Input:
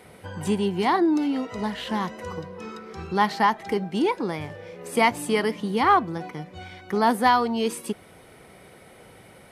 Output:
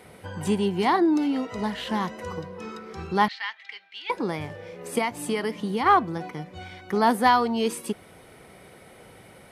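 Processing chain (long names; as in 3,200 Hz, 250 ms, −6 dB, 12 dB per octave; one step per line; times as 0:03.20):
0:03.28–0:04.10: flat-topped band-pass 2,800 Hz, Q 1.2
0:04.98–0:05.86: downward compressor 5 to 1, threshold −23 dBFS, peak gain reduction 8.5 dB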